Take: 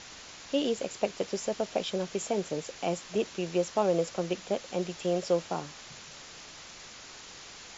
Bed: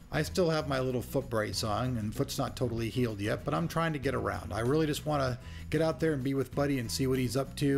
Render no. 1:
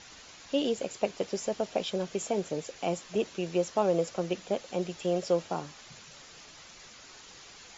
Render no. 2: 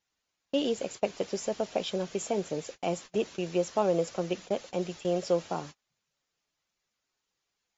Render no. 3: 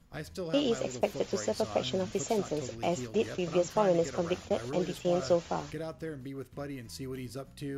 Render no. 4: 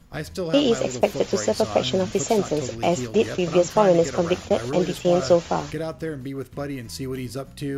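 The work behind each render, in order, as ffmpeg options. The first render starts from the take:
ffmpeg -i in.wav -af "afftdn=noise_reduction=6:noise_floor=-48" out.wav
ffmpeg -i in.wav -af "agate=range=-33dB:threshold=-42dB:ratio=16:detection=peak" out.wav
ffmpeg -i in.wav -i bed.wav -filter_complex "[1:a]volume=-10dB[link_01];[0:a][link_01]amix=inputs=2:normalize=0" out.wav
ffmpeg -i in.wav -af "volume=9.5dB" out.wav

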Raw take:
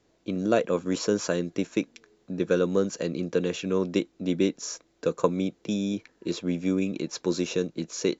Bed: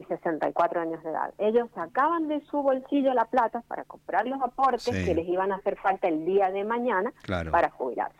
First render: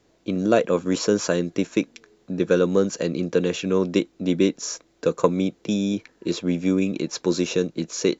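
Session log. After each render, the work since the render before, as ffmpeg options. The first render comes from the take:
ffmpeg -i in.wav -af "acontrast=20" out.wav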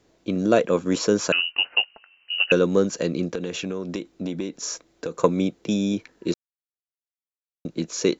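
ffmpeg -i in.wav -filter_complex "[0:a]asettb=1/sr,asplit=3[link_01][link_02][link_03];[link_01]atrim=end=1.324[link_04];[link_02]atrim=start=1.32:end=2.52,asetpts=PTS-STARTPTS,afade=type=in:duration=0.004:curve=qsin,afade=type=out:start_time=1.196:duration=0.004:curve=qsin,lowpass=frequency=2600:width_type=q:width=0.5098,lowpass=frequency=2600:width_type=q:width=0.6013,lowpass=frequency=2600:width_type=q:width=0.9,lowpass=frequency=2600:width_type=q:width=2.563,afreqshift=-3100[link_05];[link_03]atrim=start=2.516[link_06];[link_04][link_05]acrossfade=duration=0.004:curve1=hsin:curve2=qsin[link_07];[link_07][link_06]acrossfade=duration=0.004:curve1=qsin:curve2=hsin,asettb=1/sr,asplit=3[link_08][link_09][link_10];[link_08]atrim=end=3.344[link_11];[link_09]atrim=start=3.34:end=5.17,asetpts=PTS-STARTPTS,afade=type=in:duration=0.004:curve=qsin,afade=type=out:start_time=1.826:duration=0.004:curve=qsin,acompressor=threshold=-24dB:ratio=10:attack=3.2:release=140:knee=1:detection=peak[link_12];[link_10]atrim=start=5.166[link_13];[link_11][link_12]acrossfade=duration=0.004:curve1=hsin:curve2=qsin[link_14];[link_14][link_13]acrossfade=duration=0.004:curve1=qsin:curve2=hsin,asplit=3[link_15][link_16][link_17];[link_15]atrim=end=6.34,asetpts=PTS-STARTPTS,afade=type=out:start_time=6.336:duration=0.004:curve=hsin[link_18];[link_16]atrim=start=6.34:end=7.65,asetpts=PTS-STARTPTS,volume=0[link_19];[link_17]atrim=start=7.65,asetpts=PTS-STARTPTS,afade=type=in:duration=0.004:curve=hsin[link_20];[link_18][link_19][link_20]concat=n=3:v=0:a=1" out.wav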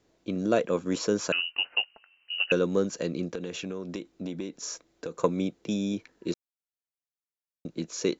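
ffmpeg -i in.wav -af "volume=-6dB" out.wav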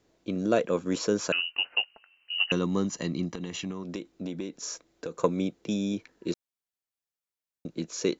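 ffmpeg -i in.wav -filter_complex "[0:a]asettb=1/sr,asplit=3[link_01][link_02][link_03];[link_01]atrim=end=2.354[link_04];[link_02]atrim=start=2.35:end=3.84,asetpts=PTS-STARTPTS,afade=type=in:duration=0.004:curve=qsin,afade=type=out:start_time=1.486:duration=0.004:curve=qsin,aecho=1:1:1:0.65,atrim=end_sample=65709[link_05];[link_03]atrim=start=3.836[link_06];[link_04][link_05]acrossfade=duration=0.004:curve1=hsin:curve2=qsin[link_07];[link_07][link_06]acrossfade=duration=0.004:curve1=qsin:curve2=hsin" out.wav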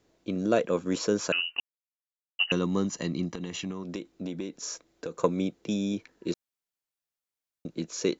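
ffmpeg -i in.wav -filter_complex "[0:a]asplit=3[link_01][link_02][link_03];[link_01]atrim=end=1.6,asetpts=PTS-STARTPTS,afade=type=out:start_time=1.596:duration=0.004:curve=hsin[link_04];[link_02]atrim=start=1.6:end=2.39,asetpts=PTS-STARTPTS,volume=0[link_05];[link_03]atrim=start=2.39,asetpts=PTS-STARTPTS,afade=type=in:duration=0.004:curve=hsin[link_06];[link_04][link_05][link_06]concat=n=3:v=0:a=1" out.wav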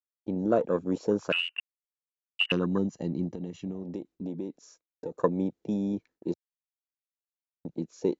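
ffmpeg -i in.wav -af "afwtdn=0.0178,agate=range=-33dB:threshold=-49dB:ratio=3:detection=peak" out.wav

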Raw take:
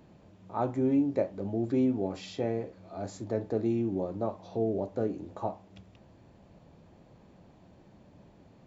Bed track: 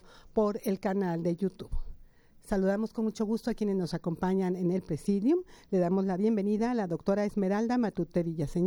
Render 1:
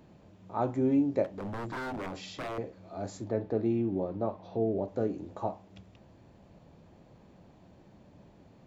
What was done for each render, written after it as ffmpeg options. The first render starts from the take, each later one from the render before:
ffmpeg -i in.wav -filter_complex "[0:a]asettb=1/sr,asplit=3[link_01][link_02][link_03];[link_01]atrim=end=1.244[link_04];[link_02]atrim=start=1.24:end=2.58,asetpts=PTS-STARTPTS,afade=type=in:duration=0.004:curve=qsin,afade=type=out:start_time=1.336:duration=0.004:curve=qsin,aeval=exprs='0.0266*(abs(mod(val(0)/0.0266+3,4)-2)-1)':channel_layout=same[link_05];[link_03]atrim=start=2.576[link_06];[link_04][link_05]acrossfade=duration=0.004:curve1=hsin:curve2=qsin[link_07];[link_07][link_06]acrossfade=duration=0.004:curve1=qsin:curve2=hsin,asettb=1/sr,asplit=3[link_08][link_09][link_10];[link_08]atrim=end=3.294[link_11];[link_09]atrim=start=3.29:end=4.88,asetpts=PTS-STARTPTS,afade=type=in:duration=0.004:curve=qsin,afade=type=out:start_time=1.586:duration=0.004:curve=qsin,lowpass=3700[link_12];[link_10]atrim=start=4.876[link_13];[link_11][link_12]acrossfade=duration=0.004:curve1=hsin:curve2=qsin[link_14];[link_14][link_13]acrossfade=duration=0.004:curve1=qsin:curve2=hsin" out.wav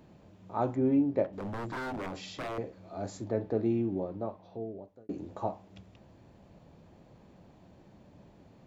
ffmpeg -i in.wav -filter_complex "[0:a]asettb=1/sr,asplit=3[link_01][link_02][link_03];[link_01]atrim=end=0.754[link_04];[link_02]atrim=start=0.75:end=1.33,asetpts=PTS-STARTPTS,afade=type=in:duration=0.004:curve=qsin,afade=type=out:start_time=0.576:duration=0.004:curve=qsin,adynamicsmooth=sensitivity=2:basefreq=3200[link_05];[link_03]atrim=start=1.326[link_06];[link_04][link_05]acrossfade=duration=0.004:curve1=hsin:curve2=qsin[link_07];[link_07][link_06]acrossfade=duration=0.004:curve1=qsin:curve2=hsin,asplit=2[link_08][link_09];[link_08]atrim=end=5.09,asetpts=PTS-STARTPTS,afade=type=out:start_time=3.74:duration=1.35[link_10];[link_09]atrim=start=5.09,asetpts=PTS-STARTPTS,afade=type=in:duration=0.004:curve=hsin[link_11];[link_10][link_11]concat=n=2:v=0:a=1" out.wav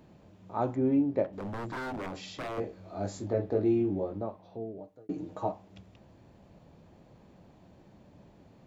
ffmpeg -i in.wav -filter_complex "[0:a]asettb=1/sr,asplit=3[link_01][link_02][link_03];[link_01]atrim=end=2.554[link_04];[link_02]atrim=start=2.55:end=4.22,asetpts=PTS-STARTPTS,afade=type=in:duration=0.004:curve=qsin,afade=type=out:start_time=1.666:duration=0.004:curve=qsin,asplit=2[link_05][link_06];[link_06]adelay=20,volume=-2.5dB[link_07];[link_05][link_07]amix=inputs=2:normalize=0,atrim=end_sample=73647[link_08];[link_03]atrim=start=4.216[link_09];[link_04][link_08]acrossfade=duration=0.004:curve1=hsin:curve2=qsin[link_10];[link_10][link_09]acrossfade=duration=0.004:curve1=qsin:curve2=hsin,asettb=1/sr,asplit=3[link_11][link_12][link_13];[link_11]atrim=end=4.774[link_14];[link_12]atrim=start=4.77:end=5.52,asetpts=PTS-STARTPTS,afade=type=in:duration=0.004:curve=qsin,afade=type=out:start_time=0.746:duration=0.004:curve=qsin,aecho=1:1:6.5:0.63,atrim=end_sample=33075[link_15];[link_13]atrim=start=5.516[link_16];[link_14][link_15]acrossfade=duration=0.004:curve1=hsin:curve2=qsin[link_17];[link_17][link_16]acrossfade=duration=0.004:curve1=qsin:curve2=hsin" out.wav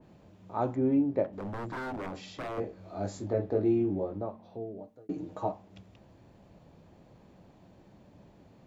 ffmpeg -i in.wav -af "bandreject=frequency=74.97:width_type=h:width=4,bandreject=frequency=149.94:width_type=h:width=4,bandreject=frequency=224.91:width_type=h:width=4,adynamicequalizer=threshold=0.00282:dfrequency=2200:dqfactor=0.7:tfrequency=2200:tqfactor=0.7:attack=5:release=100:ratio=0.375:range=2:mode=cutabove:tftype=highshelf" out.wav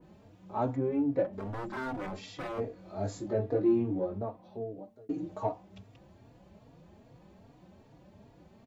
ffmpeg -i in.wav -filter_complex "[0:a]asplit=2[link_01][link_02];[link_02]asoftclip=type=tanh:threshold=-25dB,volume=-8dB[link_03];[link_01][link_03]amix=inputs=2:normalize=0,asplit=2[link_04][link_05];[link_05]adelay=3.6,afreqshift=2.5[link_06];[link_04][link_06]amix=inputs=2:normalize=1" out.wav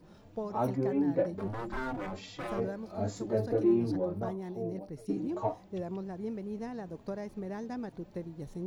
ffmpeg -i in.wav -i bed.wav -filter_complex "[1:a]volume=-10.5dB[link_01];[0:a][link_01]amix=inputs=2:normalize=0" out.wav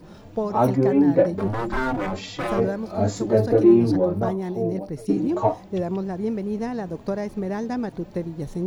ffmpeg -i in.wav -af "volume=11.5dB" out.wav

